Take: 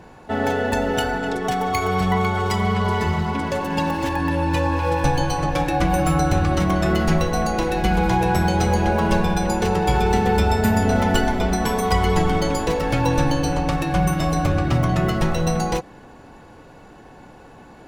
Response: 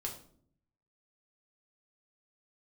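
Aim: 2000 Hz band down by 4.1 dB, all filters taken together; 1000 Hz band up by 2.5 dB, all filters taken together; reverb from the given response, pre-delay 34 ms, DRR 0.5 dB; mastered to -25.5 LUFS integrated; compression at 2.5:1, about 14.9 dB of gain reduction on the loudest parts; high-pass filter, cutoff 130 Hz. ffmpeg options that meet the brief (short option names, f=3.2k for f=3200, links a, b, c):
-filter_complex "[0:a]highpass=130,equalizer=f=1k:t=o:g=5,equalizer=f=2k:t=o:g=-8.5,acompressor=threshold=-39dB:ratio=2.5,asplit=2[a][b];[1:a]atrim=start_sample=2205,adelay=34[c];[b][c]afir=irnorm=-1:irlink=0,volume=-0.5dB[d];[a][d]amix=inputs=2:normalize=0,volume=6dB"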